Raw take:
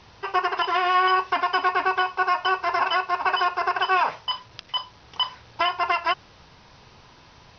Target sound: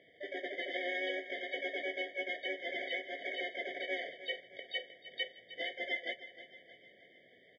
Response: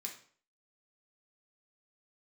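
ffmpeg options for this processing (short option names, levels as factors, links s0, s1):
-filter_complex "[0:a]equalizer=f=820:w=1.3:g=-12,alimiter=limit=0.119:level=0:latency=1:release=303,acrusher=samples=8:mix=1:aa=0.000001,asplit=3[s0][s1][s2];[s1]asetrate=33038,aresample=44100,atempo=1.33484,volume=0.447[s3];[s2]asetrate=66075,aresample=44100,atempo=0.66742,volume=0.631[s4];[s0][s3][s4]amix=inputs=3:normalize=0,asuperstop=centerf=1400:order=8:qfactor=2.4,highpass=480,equalizer=f=530:t=q:w=4:g=3,equalizer=f=760:t=q:w=4:g=-6,equalizer=f=1200:t=q:w=4:g=3,equalizer=f=1700:t=q:w=4:g=-4,equalizer=f=2600:t=q:w=4:g=8,lowpass=f=2800:w=0.5412,lowpass=f=2800:w=1.3066,asplit=2[s5][s6];[s6]aecho=0:1:310|620|930|1240|1550:0.2|0.104|0.054|0.0281|0.0146[s7];[s5][s7]amix=inputs=2:normalize=0,afftfilt=real='re*eq(mod(floor(b*sr/1024/750),2),0)':imag='im*eq(mod(floor(b*sr/1024/750),2),0)':win_size=1024:overlap=0.75,volume=0.668"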